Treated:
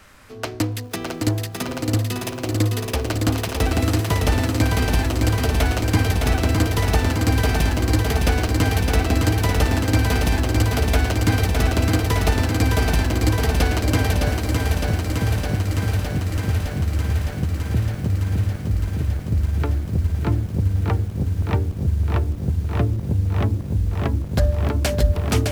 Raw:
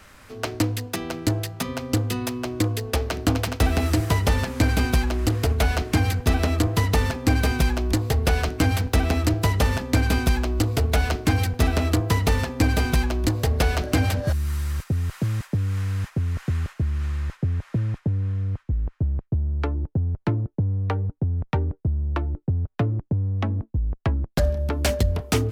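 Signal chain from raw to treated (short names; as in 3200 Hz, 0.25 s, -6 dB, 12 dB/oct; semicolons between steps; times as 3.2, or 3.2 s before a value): lo-fi delay 0.611 s, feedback 80%, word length 8-bit, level -4 dB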